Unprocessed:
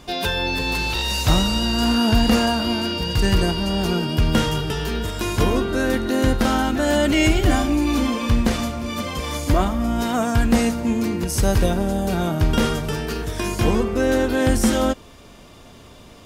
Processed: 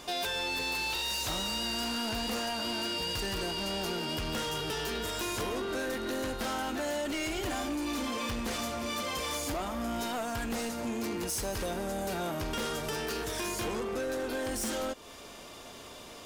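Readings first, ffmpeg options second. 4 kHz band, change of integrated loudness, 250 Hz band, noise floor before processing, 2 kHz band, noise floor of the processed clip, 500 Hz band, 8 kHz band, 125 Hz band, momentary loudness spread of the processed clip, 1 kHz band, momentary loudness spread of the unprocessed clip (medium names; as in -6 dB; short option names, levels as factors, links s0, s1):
-8.5 dB, -12.5 dB, -16.0 dB, -44 dBFS, -10.0 dB, -48 dBFS, -11.5 dB, -7.0 dB, -20.5 dB, 3 LU, -10.5 dB, 7 LU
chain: -af "bass=f=250:g=-12,treble=f=4000:g=3,acompressor=threshold=0.0398:ratio=3,asoftclip=type=tanh:threshold=0.0335"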